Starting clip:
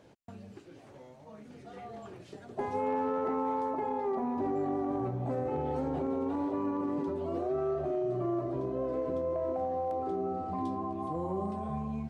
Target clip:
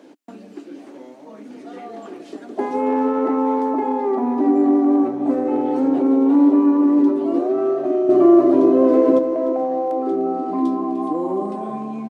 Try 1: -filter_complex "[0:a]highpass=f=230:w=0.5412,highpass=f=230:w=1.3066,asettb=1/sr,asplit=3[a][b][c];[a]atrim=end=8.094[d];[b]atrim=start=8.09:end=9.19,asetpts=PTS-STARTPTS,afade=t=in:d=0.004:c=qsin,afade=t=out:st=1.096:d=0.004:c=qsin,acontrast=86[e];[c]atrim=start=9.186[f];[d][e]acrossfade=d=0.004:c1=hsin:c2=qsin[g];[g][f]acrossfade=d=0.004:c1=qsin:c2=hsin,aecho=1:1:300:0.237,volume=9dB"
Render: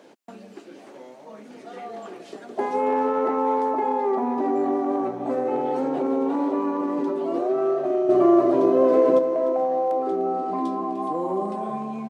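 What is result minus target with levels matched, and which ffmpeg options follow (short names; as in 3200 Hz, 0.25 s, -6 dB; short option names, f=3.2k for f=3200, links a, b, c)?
250 Hz band -4.0 dB
-filter_complex "[0:a]highpass=f=230:w=0.5412,highpass=f=230:w=1.3066,equalizer=f=290:t=o:w=0.46:g=12.5,asettb=1/sr,asplit=3[a][b][c];[a]atrim=end=8.094[d];[b]atrim=start=8.09:end=9.19,asetpts=PTS-STARTPTS,afade=t=in:d=0.004:c=qsin,afade=t=out:st=1.096:d=0.004:c=qsin,acontrast=86[e];[c]atrim=start=9.186[f];[d][e]acrossfade=d=0.004:c1=hsin:c2=qsin[g];[g][f]acrossfade=d=0.004:c1=qsin:c2=hsin,aecho=1:1:300:0.237,volume=9dB"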